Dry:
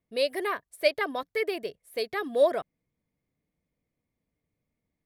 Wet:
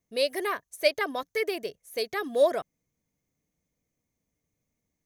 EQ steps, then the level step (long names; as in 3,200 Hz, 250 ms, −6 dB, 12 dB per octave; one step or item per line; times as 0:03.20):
parametric band 6,300 Hz +14.5 dB 0.26 octaves
high-shelf EQ 8,800 Hz +7 dB
0.0 dB